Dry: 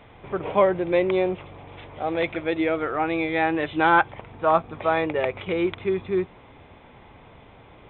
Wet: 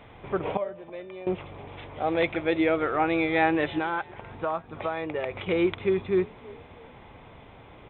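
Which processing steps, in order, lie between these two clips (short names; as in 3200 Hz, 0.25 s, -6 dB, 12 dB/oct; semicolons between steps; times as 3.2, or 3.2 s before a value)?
0.57–1.27 resonator 600 Hz, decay 0.48 s, mix 90%; 3.78–5.31 compressor 4:1, threshold -28 dBFS, peak gain reduction 13 dB; frequency-shifting echo 0.325 s, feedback 42%, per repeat +42 Hz, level -22 dB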